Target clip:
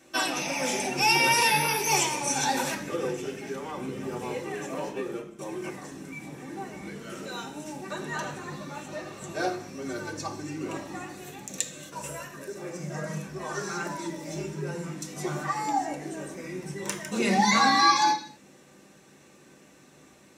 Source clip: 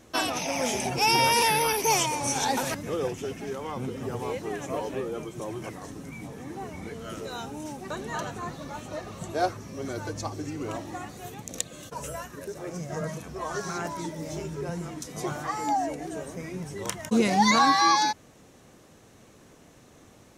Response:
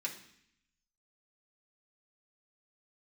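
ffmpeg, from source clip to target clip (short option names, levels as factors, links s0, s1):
-filter_complex "[0:a]asettb=1/sr,asplit=3[s0][s1][s2];[s0]atrim=end=4.744[s3];[s1]atrim=start=4.74:end=5.39,asetpts=PTS-STARTPTS,afade=t=in:d=0.004:c=qsin,afade=t=out:st=0.646:d=0.004:c=qsin,agate=range=0.158:threshold=0.0224:ratio=16:detection=peak[s4];[s2]atrim=start=5.386[s5];[s3][s4]acrossfade=d=0.004:c1=hsin:c2=qsin[s6];[s6][s5]acrossfade=d=0.004:c1=qsin:c2=hsin[s7];[1:a]atrim=start_sample=2205,afade=t=out:st=0.31:d=0.01,atrim=end_sample=14112[s8];[s7][s8]afir=irnorm=-1:irlink=0"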